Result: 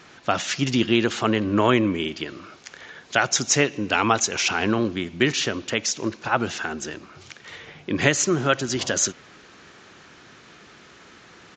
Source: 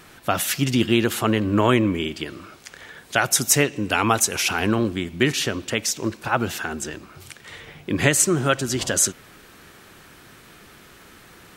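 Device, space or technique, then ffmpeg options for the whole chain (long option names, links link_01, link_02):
Bluetooth headset: -af "highpass=frequency=140:poles=1,aresample=16000,aresample=44100" -ar 16000 -c:a sbc -b:a 64k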